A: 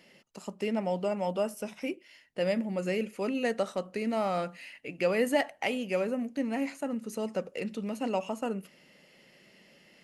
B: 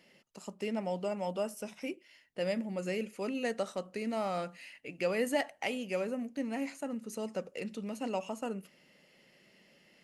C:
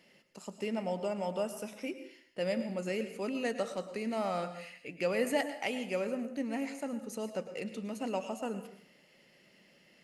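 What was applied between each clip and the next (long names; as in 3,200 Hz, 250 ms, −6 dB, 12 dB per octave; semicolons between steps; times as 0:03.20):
dynamic equaliser 7,100 Hz, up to +4 dB, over −56 dBFS, Q 0.72; level −4.5 dB
dense smooth reverb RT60 0.57 s, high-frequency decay 0.8×, pre-delay 95 ms, DRR 10 dB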